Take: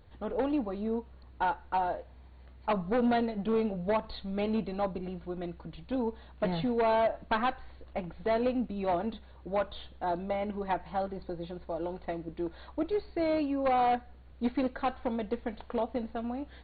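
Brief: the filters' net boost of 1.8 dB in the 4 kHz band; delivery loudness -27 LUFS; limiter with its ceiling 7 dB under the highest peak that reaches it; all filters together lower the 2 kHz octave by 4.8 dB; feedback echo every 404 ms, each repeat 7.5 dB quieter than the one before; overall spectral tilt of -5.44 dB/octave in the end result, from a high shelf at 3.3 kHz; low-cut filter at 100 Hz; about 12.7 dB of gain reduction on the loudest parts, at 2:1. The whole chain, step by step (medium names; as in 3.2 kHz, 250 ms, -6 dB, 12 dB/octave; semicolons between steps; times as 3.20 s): high-pass 100 Hz; peaking EQ 2 kHz -7 dB; treble shelf 3.3 kHz -4.5 dB; peaking EQ 4 kHz +7.5 dB; compression 2:1, threshold -49 dBFS; peak limiter -36.5 dBFS; feedback delay 404 ms, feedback 42%, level -7.5 dB; trim +18.5 dB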